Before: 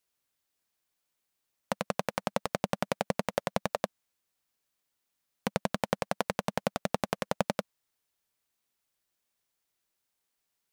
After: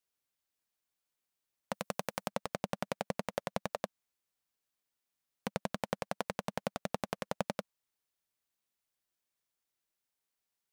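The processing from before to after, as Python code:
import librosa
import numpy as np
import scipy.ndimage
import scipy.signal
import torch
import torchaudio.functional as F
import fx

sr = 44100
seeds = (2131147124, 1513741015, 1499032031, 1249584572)

y = fx.high_shelf(x, sr, hz=5700.0, db=8.0, at=(1.74, 2.28))
y = y * librosa.db_to_amplitude(-6.0)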